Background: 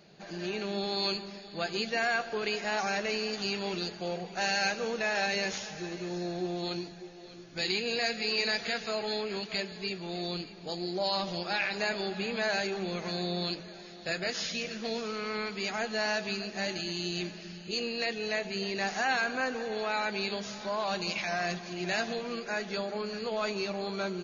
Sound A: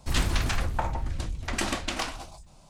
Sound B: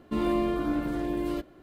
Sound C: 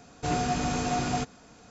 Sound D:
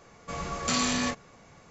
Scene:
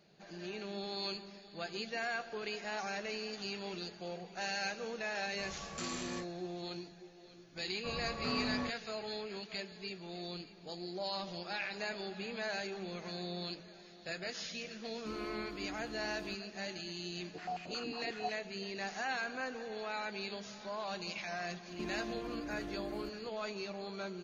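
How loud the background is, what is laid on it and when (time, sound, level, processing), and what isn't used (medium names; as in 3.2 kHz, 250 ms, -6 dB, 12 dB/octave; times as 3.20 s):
background -8.5 dB
5.10 s: add D -14.5 dB
7.56 s: add D -7 dB + Bessel low-pass 1.2 kHz
14.94 s: add B -17.5 dB
17.11 s: add C -6.5 dB + step-sequenced band-pass 11 Hz 290–2500 Hz
21.68 s: add B -5 dB + compression 12:1, threshold -34 dBFS
not used: A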